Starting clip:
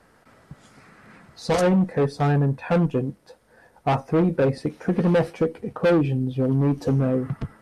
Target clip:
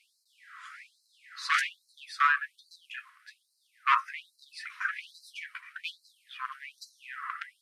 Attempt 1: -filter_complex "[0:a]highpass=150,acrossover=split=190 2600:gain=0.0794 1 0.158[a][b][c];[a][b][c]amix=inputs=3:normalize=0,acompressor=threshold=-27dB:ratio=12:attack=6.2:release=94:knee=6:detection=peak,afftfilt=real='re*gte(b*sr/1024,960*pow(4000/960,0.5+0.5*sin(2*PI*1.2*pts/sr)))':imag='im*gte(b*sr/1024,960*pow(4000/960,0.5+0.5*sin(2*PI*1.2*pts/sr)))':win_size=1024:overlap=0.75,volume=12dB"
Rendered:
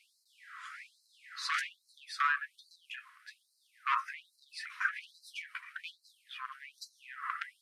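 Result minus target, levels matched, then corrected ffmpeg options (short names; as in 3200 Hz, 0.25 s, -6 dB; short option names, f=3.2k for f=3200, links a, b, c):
compressor: peak gain reduction +8.5 dB
-filter_complex "[0:a]highpass=150,acrossover=split=190 2600:gain=0.0794 1 0.158[a][b][c];[a][b][c]amix=inputs=3:normalize=0,acompressor=threshold=-17.5dB:ratio=12:attack=6.2:release=94:knee=6:detection=peak,afftfilt=real='re*gte(b*sr/1024,960*pow(4000/960,0.5+0.5*sin(2*PI*1.2*pts/sr)))':imag='im*gte(b*sr/1024,960*pow(4000/960,0.5+0.5*sin(2*PI*1.2*pts/sr)))':win_size=1024:overlap=0.75,volume=12dB"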